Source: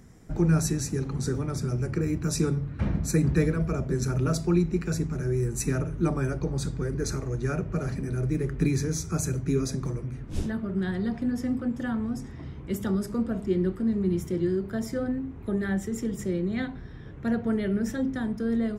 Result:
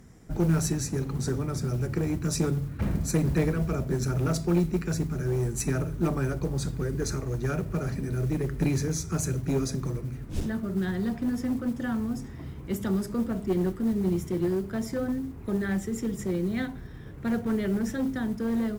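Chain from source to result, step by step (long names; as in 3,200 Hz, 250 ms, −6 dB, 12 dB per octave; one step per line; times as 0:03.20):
noise that follows the level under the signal 29 dB
asymmetric clip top −23.5 dBFS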